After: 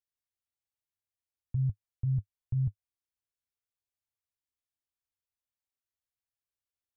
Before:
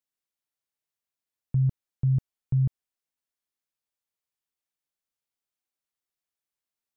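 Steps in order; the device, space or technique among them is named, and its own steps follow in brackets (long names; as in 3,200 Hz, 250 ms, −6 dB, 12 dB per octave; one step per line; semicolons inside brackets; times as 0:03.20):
car stereo with a boomy subwoofer (low shelf with overshoot 130 Hz +8 dB, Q 3; brickwall limiter −16 dBFS, peak gain reduction 4.5 dB)
level −8 dB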